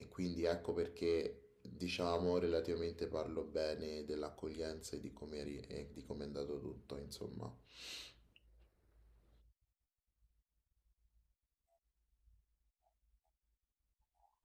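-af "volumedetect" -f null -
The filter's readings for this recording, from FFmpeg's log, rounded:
mean_volume: -44.8 dB
max_volume: -25.3 dB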